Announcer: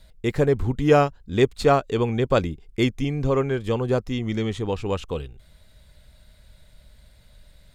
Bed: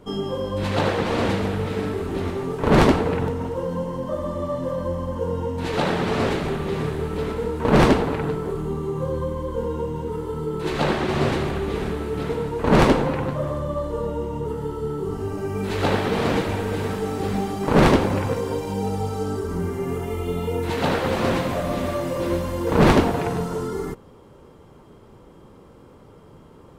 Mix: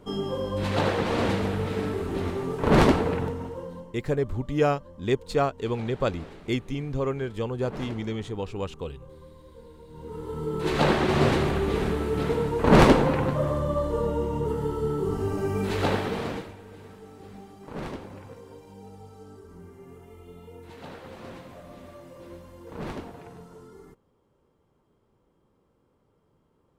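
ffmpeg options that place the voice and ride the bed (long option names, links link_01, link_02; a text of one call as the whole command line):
ffmpeg -i stem1.wav -i stem2.wav -filter_complex "[0:a]adelay=3700,volume=-6dB[link_01];[1:a]volume=19.5dB,afade=type=out:start_time=3.03:duration=0.93:silence=0.105925,afade=type=in:start_time=9.87:duration=0.91:silence=0.0749894,afade=type=out:start_time=15.47:duration=1.07:silence=0.0944061[link_02];[link_01][link_02]amix=inputs=2:normalize=0" out.wav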